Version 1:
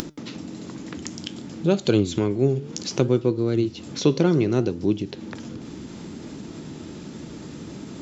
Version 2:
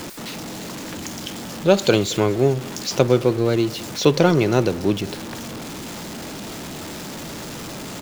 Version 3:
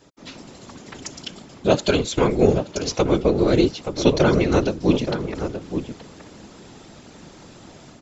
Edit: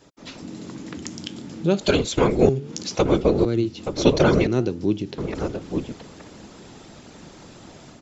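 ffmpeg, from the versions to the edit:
-filter_complex "[0:a]asplit=4[s0][s1][s2][s3];[2:a]asplit=5[s4][s5][s6][s7][s8];[s4]atrim=end=0.422[s9];[s0]atrim=start=0.418:end=1.812[s10];[s5]atrim=start=1.808:end=2.492[s11];[s1]atrim=start=2.488:end=2.952[s12];[s6]atrim=start=2.948:end=3.452[s13];[s2]atrim=start=3.448:end=3.862[s14];[s7]atrim=start=3.858:end=4.472[s15];[s3]atrim=start=4.468:end=5.182[s16];[s8]atrim=start=5.178[s17];[s9][s10]acrossfade=d=0.004:c1=hsin:c2=hsin[s18];[s18][s11]acrossfade=d=0.004:c1=hsin:c2=hsin[s19];[s19][s12]acrossfade=d=0.004:c1=hsin:c2=hsin[s20];[s20][s13]acrossfade=d=0.004:c1=hsin:c2=hsin[s21];[s21][s14]acrossfade=d=0.004:c1=hsin:c2=hsin[s22];[s22][s15]acrossfade=d=0.004:c1=hsin:c2=hsin[s23];[s23][s16]acrossfade=d=0.004:c1=hsin:c2=hsin[s24];[s24][s17]acrossfade=d=0.004:c1=hsin:c2=hsin"

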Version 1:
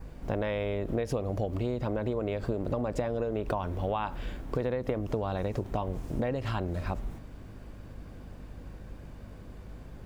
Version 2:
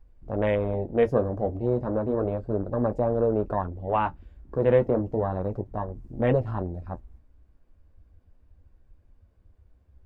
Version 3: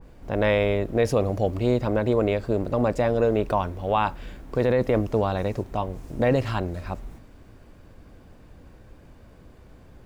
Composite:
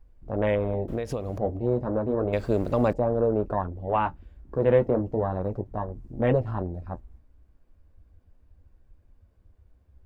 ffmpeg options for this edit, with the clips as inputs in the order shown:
-filter_complex "[1:a]asplit=3[s0][s1][s2];[s0]atrim=end=0.882[s3];[0:a]atrim=start=0.878:end=1.382[s4];[s1]atrim=start=1.378:end=2.332[s5];[2:a]atrim=start=2.328:end=2.932[s6];[s2]atrim=start=2.928[s7];[s3][s4]acrossfade=d=0.004:c1=hsin:c2=hsin[s8];[s8][s5]acrossfade=d=0.004:c1=hsin:c2=hsin[s9];[s9][s6]acrossfade=d=0.004:c1=hsin:c2=hsin[s10];[s10][s7]acrossfade=d=0.004:c1=hsin:c2=hsin"

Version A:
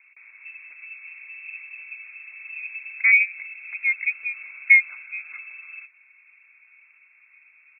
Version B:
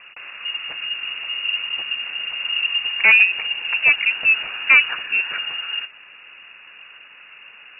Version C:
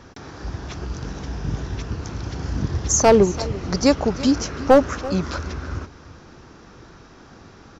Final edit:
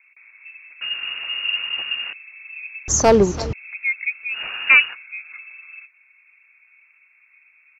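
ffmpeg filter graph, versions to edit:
-filter_complex "[1:a]asplit=2[s0][s1];[0:a]asplit=4[s2][s3][s4][s5];[s2]atrim=end=0.812[s6];[s0]atrim=start=0.808:end=2.132[s7];[s3]atrim=start=2.128:end=2.882[s8];[2:a]atrim=start=2.878:end=3.532[s9];[s4]atrim=start=3.528:end=4.44[s10];[s1]atrim=start=4.28:end=4.97[s11];[s5]atrim=start=4.81[s12];[s6][s7]acrossfade=d=0.004:c1=hsin:c2=hsin[s13];[s13][s8]acrossfade=d=0.004:c1=hsin:c2=hsin[s14];[s14][s9]acrossfade=d=0.004:c1=hsin:c2=hsin[s15];[s15][s10]acrossfade=d=0.004:c1=hsin:c2=hsin[s16];[s16][s11]acrossfade=d=0.16:c1=tri:c2=tri[s17];[s17][s12]acrossfade=d=0.16:c1=tri:c2=tri"

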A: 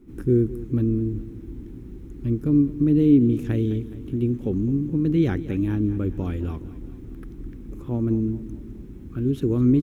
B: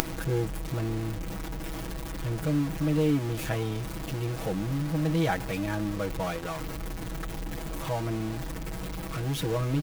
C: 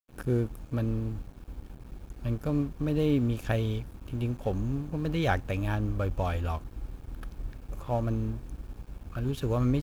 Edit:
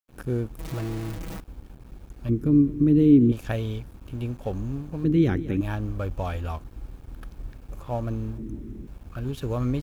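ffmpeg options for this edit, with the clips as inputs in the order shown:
-filter_complex "[0:a]asplit=3[s0][s1][s2];[2:a]asplit=5[s3][s4][s5][s6][s7];[s3]atrim=end=0.592[s8];[1:a]atrim=start=0.588:end=1.402[s9];[s4]atrim=start=1.398:end=2.292[s10];[s0]atrim=start=2.288:end=3.322[s11];[s5]atrim=start=3.318:end=5.042[s12];[s1]atrim=start=5.038:end=5.612[s13];[s6]atrim=start=5.608:end=8.382[s14];[s2]atrim=start=8.378:end=8.872[s15];[s7]atrim=start=8.868[s16];[s8][s9]acrossfade=d=0.004:c1=hsin:c2=hsin[s17];[s17][s10]acrossfade=d=0.004:c1=hsin:c2=hsin[s18];[s18][s11]acrossfade=d=0.004:c1=hsin:c2=hsin[s19];[s19][s12]acrossfade=d=0.004:c1=hsin:c2=hsin[s20];[s20][s13]acrossfade=d=0.004:c1=hsin:c2=hsin[s21];[s21][s14]acrossfade=d=0.004:c1=hsin:c2=hsin[s22];[s22][s15]acrossfade=d=0.004:c1=hsin:c2=hsin[s23];[s23][s16]acrossfade=d=0.004:c1=hsin:c2=hsin"

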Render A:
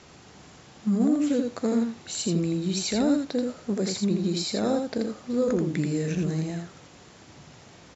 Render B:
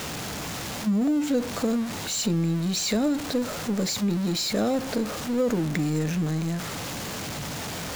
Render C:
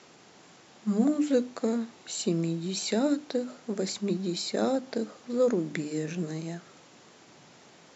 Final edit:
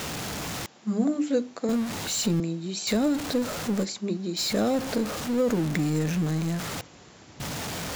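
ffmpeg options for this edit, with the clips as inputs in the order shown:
-filter_complex "[2:a]asplit=3[s0][s1][s2];[1:a]asplit=5[s3][s4][s5][s6][s7];[s3]atrim=end=0.662[s8];[s0]atrim=start=0.658:end=1.692[s9];[s4]atrim=start=1.688:end=2.402[s10];[s1]atrim=start=2.398:end=2.872[s11];[s5]atrim=start=2.868:end=3.86[s12];[s2]atrim=start=3.82:end=4.4[s13];[s6]atrim=start=4.36:end=6.812[s14];[0:a]atrim=start=6.808:end=7.402[s15];[s7]atrim=start=7.398[s16];[s8][s9]acrossfade=d=0.004:c1=hsin:c2=hsin[s17];[s17][s10]acrossfade=d=0.004:c1=hsin:c2=hsin[s18];[s18][s11]acrossfade=d=0.004:c1=hsin:c2=hsin[s19];[s19][s12]acrossfade=d=0.004:c1=hsin:c2=hsin[s20];[s20][s13]acrossfade=d=0.04:c1=tri:c2=tri[s21];[s21][s14]acrossfade=d=0.04:c1=tri:c2=tri[s22];[s22][s15]acrossfade=d=0.004:c1=hsin:c2=hsin[s23];[s23][s16]acrossfade=d=0.004:c1=hsin:c2=hsin"

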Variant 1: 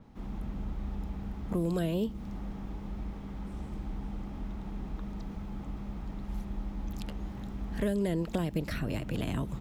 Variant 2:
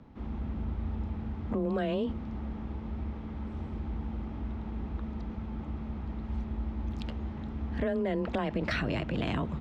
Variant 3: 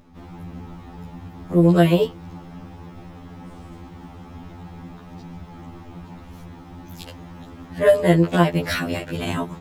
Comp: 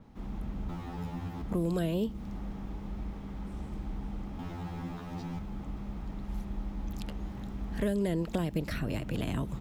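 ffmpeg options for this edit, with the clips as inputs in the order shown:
-filter_complex "[2:a]asplit=2[s0][s1];[0:a]asplit=3[s2][s3][s4];[s2]atrim=end=0.692[s5];[s0]atrim=start=0.688:end=1.422[s6];[s3]atrim=start=1.418:end=4.392[s7];[s1]atrim=start=4.388:end=5.392[s8];[s4]atrim=start=5.388[s9];[s5][s6]acrossfade=d=0.004:c1=hsin:c2=hsin[s10];[s10][s7]acrossfade=d=0.004:c1=hsin:c2=hsin[s11];[s11][s8]acrossfade=d=0.004:c1=hsin:c2=hsin[s12];[s12][s9]acrossfade=d=0.004:c1=hsin:c2=hsin"

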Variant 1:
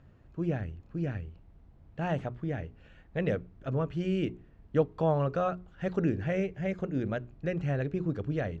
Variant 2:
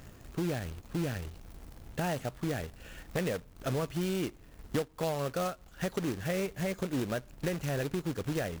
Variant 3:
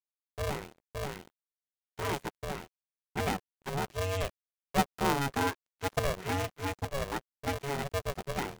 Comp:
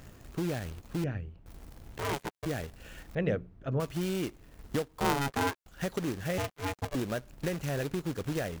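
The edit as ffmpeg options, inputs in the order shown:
-filter_complex "[0:a]asplit=2[s0][s1];[2:a]asplit=3[s2][s3][s4];[1:a]asplit=6[s5][s6][s7][s8][s9][s10];[s5]atrim=end=1.042[s11];[s0]atrim=start=1.038:end=1.462[s12];[s6]atrim=start=1.458:end=1.982[s13];[s2]atrim=start=1.978:end=2.462[s14];[s7]atrim=start=2.458:end=3.152[s15];[s1]atrim=start=3.148:end=3.802[s16];[s8]atrim=start=3.798:end=5.002[s17];[s3]atrim=start=4.998:end=5.662[s18];[s9]atrim=start=5.658:end=6.382[s19];[s4]atrim=start=6.378:end=6.952[s20];[s10]atrim=start=6.948[s21];[s11][s12]acrossfade=d=0.004:c1=hsin:c2=hsin[s22];[s22][s13]acrossfade=d=0.004:c1=hsin:c2=hsin[s23];[s23][s14]acrossfade=d=0.004:c1=hsin:c2=hsin[s24];[s24][s15]acrossfade=d=0.004:c1=hsin:c2=hsin[s25];[s25][s16]acrossfade=d=0.004:c1=hsin:c2=hsin[s26];[s26][s17]acrossfade=d=0.004:c1=hsin:c2=hsin[s27];[s27][s18]acrossfade=d=0.004:c1=hsin:c2=hsin[s28];[s28][s19]acrossfade=d=0.004:c1=hsin:c2=hsin[s29];[s29][s20]acrossfade=d=0.004:c1=hsin:c2=hsin[s30];[s30][s21]acrossfade=d=0.004:c1=hsin:c2=hsin"

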